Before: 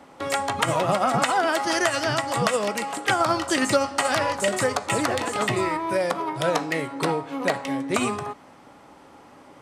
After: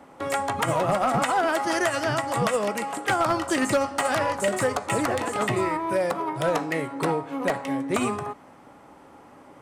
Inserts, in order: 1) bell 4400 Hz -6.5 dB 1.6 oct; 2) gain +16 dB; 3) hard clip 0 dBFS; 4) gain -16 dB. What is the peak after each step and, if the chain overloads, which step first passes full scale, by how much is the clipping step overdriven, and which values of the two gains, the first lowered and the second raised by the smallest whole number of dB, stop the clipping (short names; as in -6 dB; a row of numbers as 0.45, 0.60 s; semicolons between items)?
-8.5, +7.5, 0.0, -16.0 dBFS; step 2, 7.5 dB; step 2 +8 dB, step 4 -8 dB